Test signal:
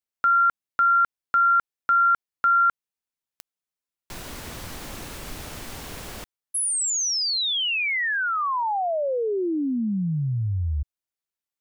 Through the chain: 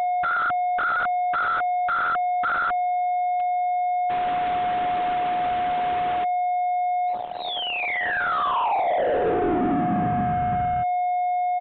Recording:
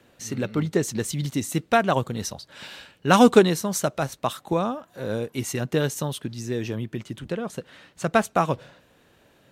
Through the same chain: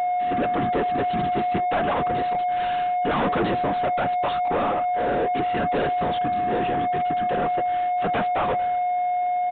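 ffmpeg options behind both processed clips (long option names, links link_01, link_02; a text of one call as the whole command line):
ffmpeg -i in.wav -filter_complex "[0:a]highpass=100,aresample=11025,asoftclip=type=tanh:threshold=-18dB,aresample=44100,afftfilt=real='hypot(re,im)*cos(2*PI*random(0))':imag='hypot(re,im)*sin(2*PI*random(1))':win_size=512:overlap=0.75,aeval=exprs='val(0)+0.0141*sin(2*PI*720*n/s)':channel_layout=same,asplit=2[link_01][link_02];[link_02]highpass=frequency=720:poles=1,volume=30dB,asoftclip=type=tanh:threshold=-15dB[link_03];[link_01][link_03]amix=inputs=2:normalize=0,lowpass=frequency=1200:poles=1,volume=-6dB,aresample=8000,aresample=44100,volume=1dB" out.wav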